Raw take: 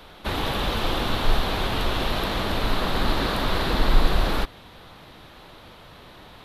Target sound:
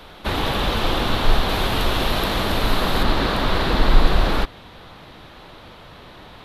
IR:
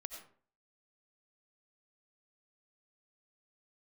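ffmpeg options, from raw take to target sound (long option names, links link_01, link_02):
-af "asetnsamples=nb_out_samples=441:pad=0,asendcmd='1.49 highshelf g 4.5;3.03 highshelf g -7.5',highshelf=frequency=8000:gain=-2.5,volume=4dB"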